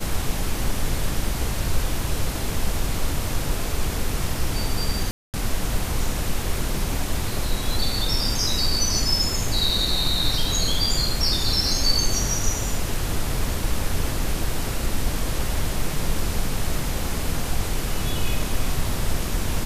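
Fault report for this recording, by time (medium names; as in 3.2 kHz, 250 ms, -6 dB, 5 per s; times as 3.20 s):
5.11–5.34 s: dropout 228 ms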